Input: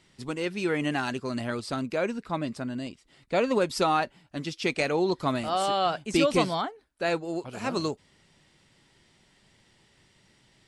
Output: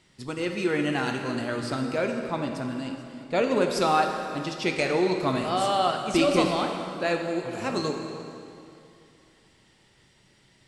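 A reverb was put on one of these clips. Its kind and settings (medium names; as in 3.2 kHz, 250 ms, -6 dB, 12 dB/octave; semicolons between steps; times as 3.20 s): plate-style reverb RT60 2.7 s, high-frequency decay 0.8×, DRR 3 dB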